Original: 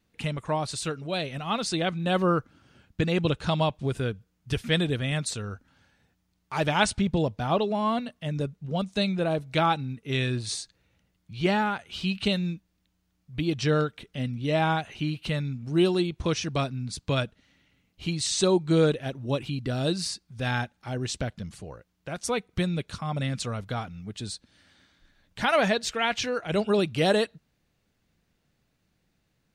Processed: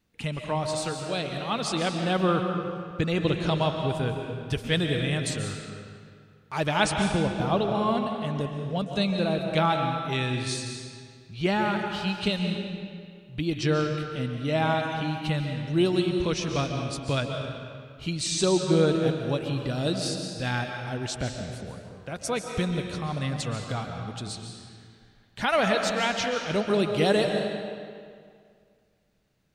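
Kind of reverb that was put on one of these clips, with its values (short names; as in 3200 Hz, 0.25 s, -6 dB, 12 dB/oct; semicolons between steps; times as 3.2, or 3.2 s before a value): digital reverb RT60 2.1 s, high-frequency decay 0.8×, pre-delay 0.1 s, DRR 3.5 dB; gain -1 dB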